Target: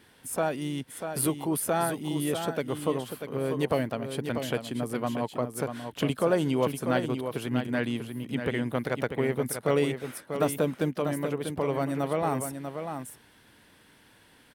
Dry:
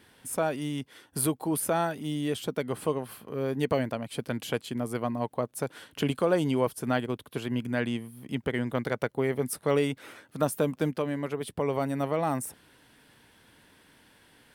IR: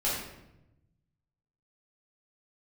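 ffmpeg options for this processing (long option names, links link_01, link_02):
-filter_complex "[0:a]asplit=2[link_01][link_02];[link_02]asetrate=52444,aresample=44100,atempo=0.840896,volume=-16dB[link_03];[link_01][link_03]amix=inputs=2:normalize=0,asplit=2[link_04][link_05];[link_05]aecho=0:1:642:0.422[link_06];[link_04][link_06]amix=inputs=2:normalize=0"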